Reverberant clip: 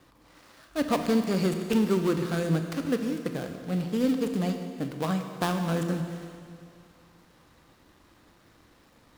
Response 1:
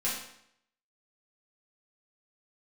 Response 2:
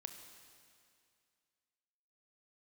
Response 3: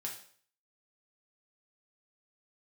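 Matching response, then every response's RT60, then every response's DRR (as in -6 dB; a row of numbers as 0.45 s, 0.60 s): 2; 0.70 s, 2.3 s, 0.50 s; -8.0 dB, 5.5 dB, -2.0 dB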